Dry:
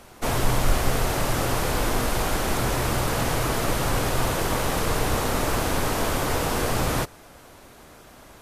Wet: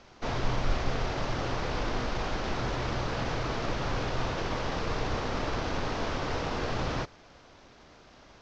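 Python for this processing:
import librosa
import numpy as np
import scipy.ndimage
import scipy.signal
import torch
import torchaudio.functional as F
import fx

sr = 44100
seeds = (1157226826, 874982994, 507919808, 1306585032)

y = fx.cvsd(x, sr, bps=32000)
y = F.gain(torch.from_numpy(y), -6.5).numpy()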